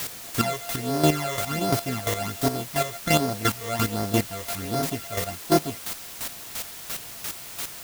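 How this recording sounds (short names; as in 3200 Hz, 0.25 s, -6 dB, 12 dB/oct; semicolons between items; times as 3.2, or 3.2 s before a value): a buzz of ramps at a fixed pitch in blocks of 64 samples; phasing stages 12, 1.3 Hz, lowest notch 250–2800 Hz; a quantiser's noise floor 6-bit, dither triangular; chopped level 2.9 Hz, depth 65%, duty 20%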